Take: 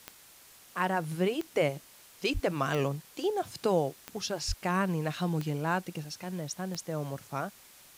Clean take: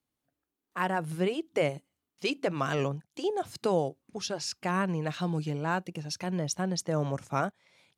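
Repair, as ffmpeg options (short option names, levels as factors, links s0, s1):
-filter_complex "[0:a]adeclick=t=4,asplit=3[s0][s1][s2];[s0]afade=t=out:st=2.33:d=0.02[s3];[s1]highpass=f=140:w=0.5412,highpass=f=140:w=1.3066,afade=t=in:st=2.33:d=0.02,afade=t=out:st=2.45:d=0.02[s4];[s2]afade=t=in:st=2.45:d=0.02[s5];[s3][s4][s5]amix=inputs=3:normalize=0,asplit=3[s6][s7][s8];[s6]afade=t=out:st=4.47:d=0.02[s9];[s7]highpass=f=140:w=0.5412,highpass=f=140:w=1.3066,afade=t=in:st=4.47:d=0.02,afade=t=out:st=4.59:d=0.02[s10];[s8]afade=t=in:st=4.59:d=0.02[s11];[s9][s10][s11]amix=inputs=3:normalize=0,afwtdn=0.002,asetnsamples=n=441:p=0,asendcmd='6.04 volume volume 5.5dB',volume=1"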